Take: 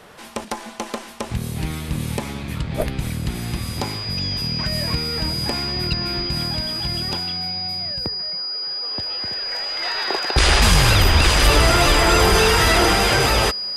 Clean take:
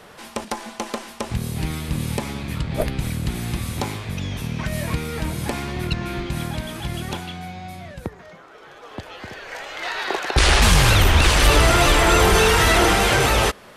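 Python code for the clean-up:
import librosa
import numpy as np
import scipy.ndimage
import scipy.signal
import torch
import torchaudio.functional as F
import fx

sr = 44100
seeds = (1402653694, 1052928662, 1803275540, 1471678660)

y = fx.notch(x, sr, hz=4900.0, q=30.0)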